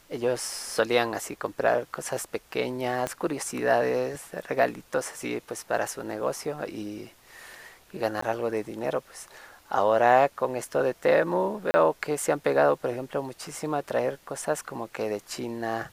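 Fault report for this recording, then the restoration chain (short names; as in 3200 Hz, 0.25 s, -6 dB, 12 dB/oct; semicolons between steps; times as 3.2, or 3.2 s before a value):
3.07 pop -15 dBFS
8.21–8.22 gap 14 ms
11.71–11.74 gap 30 ms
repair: de-click; interpolate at 8.21, 14 ms; interpolate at 11.71, 30 ms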